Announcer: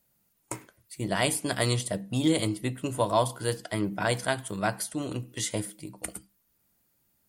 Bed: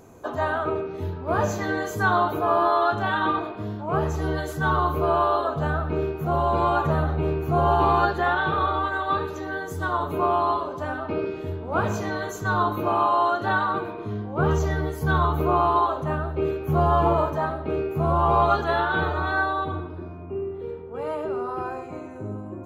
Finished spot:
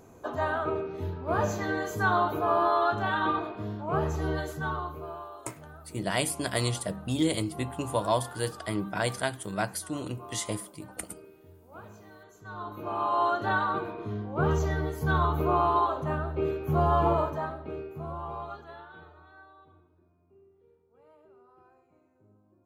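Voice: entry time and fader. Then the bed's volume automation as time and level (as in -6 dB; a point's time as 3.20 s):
4.95 s, -2.0 dB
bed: 4.42 s -4 dB
5.34 s -23 dB
12.28 s -23 dB
13.23 s -4 dB
17.14 s -4 dB
19.29 s -29.5 dB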